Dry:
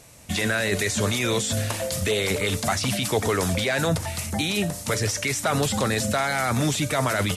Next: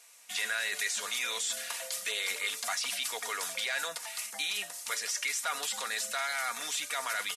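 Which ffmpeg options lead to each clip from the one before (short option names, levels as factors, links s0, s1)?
-af "highpass=1200,aecho=1:1:4.2:0.45,volume=0.501"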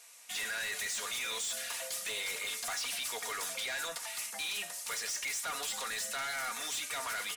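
-af "asoftclip=type=tanh:threshold=0.02,bandreject=f=97.57:t=h:w=4,bandreject=f=195.14:t=h:w=4,bandreject=f=292.71:t=h:w=4,bandreject=f=390.28:t=h:w=4,bandreject=f=487.85:t=h:w=4,bandreject=f=585.42:t=h:w=4,bandreject=f=682.99:t=h:w=4,bandreject=f=780.56:t=h:w=4,bandreject=f=878.13:t=h:w=4,bandreject=f=975.7:t=h:w=4,bandreject=f=1073.27:t=h:w=4,bandreject=f=1170.84:t=h:w=4,bandreject=f=1268.41:t=h:w=4,bandreject=f=1365.98:t=h:w=4,bandreject=f=1463.55:t=h:w=4,bandreject=f=1561.12:t=h:w=4,bandreject=f=1658.69:t=h:w=4,bandreject=f=1756.26:t=h:w=4,bandreject=f=1853.83:t=h:w=4,bandreject=f=1951.4:t=h:w=4,bandreject=f=2048.97:t=h:w=4,bandreject=f=2146.54:t=h:w=4,bandreject=f=2244.11:t=h:w=4,bandreject=f=2341.68:t=h:w=4,bandreject=f=2439.25:t=h:w=4,bandreject=f=2536.82:t=h:w=4,bandreject=f=2634.39:t=h:w=4,bandreject=f=2731.96:t=h:w=4,bandreject=f=2829.53:t=h:w=4,bandreject=f=2927.1:t=h:w=4,bandreject=f=3024.67:t=h:w=4,bandreject=f=3122.24:t=h:w=4,bandreject=f=3219.81:t=h:w=4,bandreject=f=3317.38:t=h:w=4,volume=1.19"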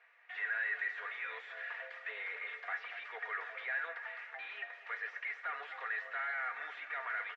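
-af "highpass=f=470:w=0.5412,highpass=f=470:w=1.3066,equalizer=f=580:t=q:w=4:g=-6,equalizer=f=970:t=q:w=4:g=-5,equalizer=f=1800:t=q:w=4:g=9,lowpass=f=2100:w=0.5412,lowpass=f=2100:w=1.3066,aecho=1:1:234|468|702|936|1170|1404:0.2|0.114|0.0648|0.037|0.0211|0.012,volume=0.841"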